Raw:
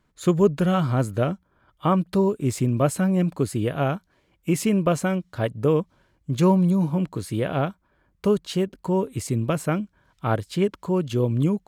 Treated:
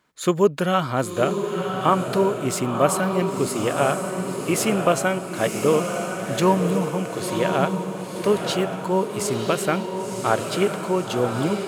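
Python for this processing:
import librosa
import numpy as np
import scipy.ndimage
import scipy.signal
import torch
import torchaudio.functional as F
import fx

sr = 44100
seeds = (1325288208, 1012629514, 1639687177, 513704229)

p1 = fx.highpass(x, sr, hz=560.0, slope=6)
p2 = p1 + fx.echo_diffused(p1, sr, ms=1022, feedback_pct=50, wet_db=-5.0, dry=0)
y = F.gain(torch.from_numpy(p2), 6.0).numpy()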